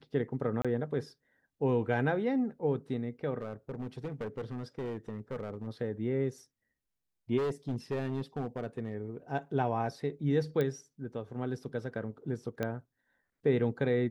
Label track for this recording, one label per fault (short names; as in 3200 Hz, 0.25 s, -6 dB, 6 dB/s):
0.620000	0.650000	gap 26 ms
3.410000	5.680000	clipped -33 dBFS
7.370000	8.950000	clipped -28.5 dBFS
10.610000	10.610000	pop -20 dBFS
12.630000	12.630000	pop -19 dBFS